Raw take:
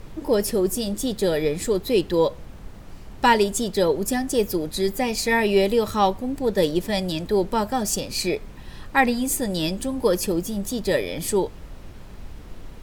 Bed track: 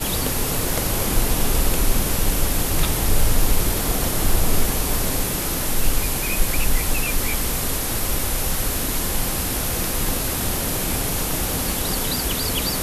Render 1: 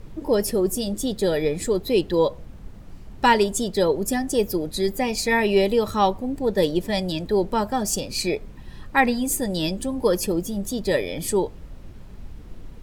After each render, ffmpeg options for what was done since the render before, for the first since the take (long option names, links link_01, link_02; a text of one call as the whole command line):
ffmpeg -i in.wav -af "afftdn=noise_reduction=6:noise_floor=-41" out.wav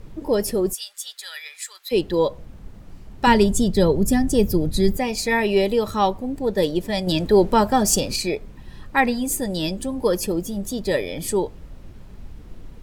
ffmpeg -i in.wav -filter_complex "[0:a]asplit=3[link_01][link_02][link_03];[link_01]afade=type=out:start_time=0.72:duration=0.02[link_04];[link_02]highpass=frequency=1400:width=0.5412,highpass=frequency=1400:width=1.3066,afade=type=in:start_time=0.72:duration=0.02,afade=type=out:start_time=1.91:duration=0.02[link_05];[link_03]afade=type=in:start_time=1.91:duration=0.02[link_06];[link_04][link_05][link_06]amix=inputs=3:normalize=0,asettb=1/sr,asplit=3[link_07][link_08][link_09];[link_07]atrim=end=3.274[link_10];[link_08]atrim=start=3.27:end=4.97,asetpts=PTS-STARTPTS,afade=type=in:duration=0.004:curve=qsin,afade=type=out:start_time=1.696:duration=0.004:curve=qsin,bass=frequency=250:gain=13,treble=frequency=4000:gain=1[link_11];[link_09]atrim=start=4.966[link_12];[link_10][link_11]acrossfade=duration=0.004:curve1=hsin:curve2=qsin[link_13];[link_13][link_12]acrossfade=duration=0.004:curve1=qsin:curve2=hsin,asplit=3[link_14][link_15][link_16];[link_14]atrim=end=7.072[link_17];[link_15]atrim=start=7.068:end=8.162,asetpts=PTS-STARTPTS,volume=6dB[link_18];[link_16]atrim=start=8.158[link_19];[link_17][link_18]acrossfade=duration=0.004:curve1=hsin:curve2=hsin[link_20];[link_20][link_19]acrossfade=duration=0.004:curve1=hsin:curve2=hsin" out.wav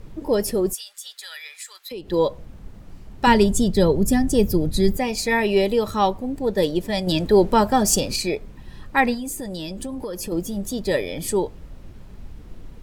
ffmpeg -i in.wav -filter_complex "[0:a]asettb=1/sr,asplit=3[link_01][link_02][link_03];[link_01]atrim=end=0.784[link_04];[link_02]atrim=start=0.78:end=2.12,asetpts=PTS-STARTPTS,afade=type=in:duration=0.004:curve=qsin,afade=type=out:start_time=1.336:duration=0.004:curve=qsin,acompressor=threshold=-32dB:ratio=4:attack=3.2:release=140:knee=1:detection=peak[link_05];[link_03]atrim=start=2.116[link_06];[link_04][link_05]acrossfade=duration=0.004:curve1=hsin:curve2=qsin[link_07];[link_07][link_06]acrossfade=duration=0.004:curve1=qsin:curve2=hsin,asettb=1/sr,asplit=3[link_08][link_09][link_10];[link_08]atrim=end=9.144[link_11];[link_09]atrim=start=9.14:end=10.32,asetpts=PTS-STARTPTS,afade=type=in:duration=0.004:curve=qsin,afade=type=out:start_time=1.176:duration=0.004:curve=qsin,acompressor=threshold=-26dB:ratio=10:attack=3.2:release=140:knee=1:detection=peak[link_12];[link_10]atrim=start=10.316[link_13];[link_11][link_12]acrossfade=duration=0.004:curve1=hsin:curve2=qsin[link_14];[link_14][link_13]acrossfade=duration=0.004:curve1=qsin:curve2=hsin" out.wav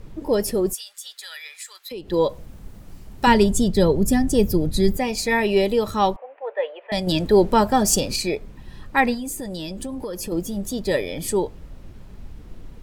ffmpeg -i in.wav -filter_complex "[0:a]asettb=1/sr,asplit=3[link_01][link_02][link_03];[link_01]atrim=end=2.294[link_04];[link_02]atrim=start=2.29:end=3.25,asetpts=PTS-STARTPTS,afade=type=in:duration=0.004:curve=qsin,afade=type=out:start_time=0.956:duration=0.004:curve=qsin,highshelf=frequency=7000:gain=11[link_05];[link_03]atrim=start=3.246[link_06];[link_04][link_05]acrossfade=duration=0.004:curve1=hsin:curve2=qsin[link_07];[link_07][link_06]acrossfade=duration=0.004:curve1=qsin:curve2=hsin,asettb=1/sr,asplit=3[link_08][link_09][link_10];[link_08]atrim=end=6.164[link_11];[link_09]atrim=start=6.16:end=6.92,asetpts=PTS-STARTPTS,afade=type=in:duration=0.004:curve=qsin,afade=type=out:start_time=0.756:duration=0.004:curve=qsin,asuperpass=centerf=1200:order=12:qfactor=0.53[link_12];[link_10]atrim=start=6.916[link_13];[link_11][link_12]acrossfade=duration=0.004:curve1=hsin:curve2=qsin[link_14];[link_14][link_13]acrossfade=duration=0.004:curve1=qsin:curve2=hsin" out.wav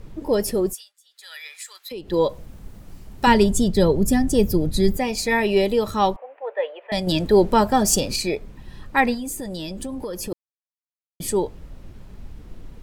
ffmpeg -i in.wav -filter_complex "[0:a]asplit=5[link_01][link_02][link_03][link_04][link_05];[link_01]atrim=end=0.92,asetpts=PTS-STARTPTS,afade=type=out:start_time=0.63:duration=0.29:silence=0.1[link_06];[link_02]atrim=start=0.92:end=1.11,asetpts=PTS-STARTPTS,volume=-20dB[link_07];[link_03]atrim=start=1.11:end=10.33,asetpts=PTS-STARTPTS,afade=type=in:duration=0.29:silence=0.1,afade=type=out:start_time=9.216:duration=0.004:curve=hsin[link_08];[link_04]atrim=start=10.33:end=11.2,asetpts=PTS-STARTPTS,volume=0[link_09];[link_05]atrim=start=11.2,asetpts=PTS-STARTPTS,afade=type=in:duration=0.004:curve=hsin[link_10];[link_06][link_07][link_08][link_09][link_10]concat=n=5:v=0:a=1" out.wav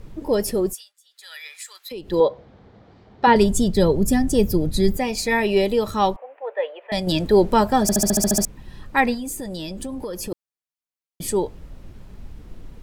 ffmpeg -i in.wav -filter_complex "[0:a]asettb=1/sr,asplit=3[link_01][link_02][link_03];[link_01]atrim=end=2.204[link_04];[link_02]atrim=start=2.2:end=3.36,asetpts=PTS-STARTPTS,afade=type=in:duration=0.004:curve=qsin,afade=type=out:start_time=1.156:duration=0.004:curve=qsin,highpass=120,equalizer=frequency=170:width_type=q:width=4:gain=-7,equalizer=frequency=270:width_type=q:width=4:gain=-3,equalizer=frequency=460:width_type=q:width=4:gain=5,equalizer=frequency=750:width_type=q:width=4:gain=5,equalizer=frequency=2700:width_type=q:width=4:gain=-7,lowpass=frequency=4000:width=0.5412,lowpass=frequency=4000:width=1.3066[link_05];[link_03]atrim=start=3.356[link_06];[link_04][link_05]acrossfade=duration=0.004:curve1=hsin:curve2=qsin[link_07];[link_07][link_06]acrossfade=duration=0.004:curve1=qsin:curve2=hsin,asplit=10[link_08][link_09][link_10][link_11][link_12][link_13][link_14][link_15][link_16][link_17];[link_08]atrim=end=7.892[link_18];[link_09]atrim=start=7.818:end=7.892[link_19];[link_10]atrim=start=7.818:end=7.892[link_20];[link_11]atrim=start=7.818:end=7.892[link_21];[link_12]atrim=start=7.818:end=7.892[link_22];[link_13]atrim=start=7.818:end=7.892[link_23];[link_14]atrim=start=7.818:end=7.892[link_24];[link_15]atrim=start=7.818:end=7.892[link_25];[link_16]atrim=start=7.818:end=7.892[link_26];[link_17]atrim=start=8.448[link_27];[link_18][link_19]acrossfade=duration=0.004:curve1=hsin:curve2=hsin[link_28];[link_28][link_20]acrossfade=duration=0.004:curve1=hsin:curve2=hsin[link_29];[link_29][link_21]acrossfade=duration=0.004:curve1=hsin:curve2=hsin[link_30];[link_30][link_22]acrossfade=duration=0.004:curve1=hsin:curve2=hsin[link_31];[link_31][link_23]acrossfade=duration=0.004:curve1=hsin:curve2=hsin[link_32];[link_32][link_24]acrossfade=duration=0.004:curve1=hsin:curve2=hsin[link_33];[link_33][link_25]acrossfade=duration=0.004:curve1=hsin:curve2=hsin[link_34];[link_34][link_26]acrossfade=duration=0.004:curve1=hsin:curve2=hsin[link_35];[link_35][link_27]acrossfade=duration=0.004:curve1=hsin:curve2=hsin" out.wav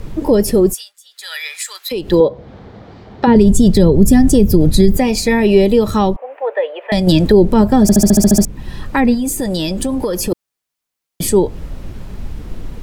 ffmpeg -i in.wav -filter_complex "[0:a]acrossover=split=390[link_01][link_02];[link_02]acompressor=threshold=-30dB:ratio=6[link_03];[link_01][link_03]amix=inputs=2:normalize=0,alimiter=level_in=12.5dB:limit=-1dB:release=50:level=0:latency=1" out.wav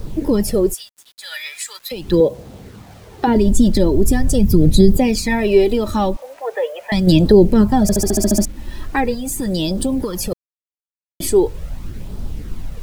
ffmpeg -i in.wav -af "flanger=delay=0.2:depth=3.3:regen=4:speed=0.41:shape=sinusoidal,acrusher=bits=7:mix=0:aa=0.000001" out.wav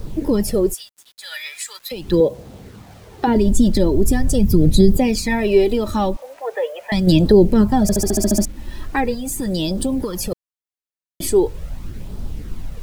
ffmpeg -i in.wav -af "volume=-1.5dB" out.wav